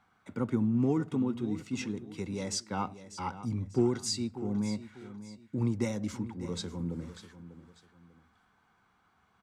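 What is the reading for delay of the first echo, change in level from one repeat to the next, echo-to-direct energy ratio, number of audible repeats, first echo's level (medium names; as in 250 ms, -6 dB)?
594 ms, -10.0 dB, -13.5 dB, 2, -14.0 dB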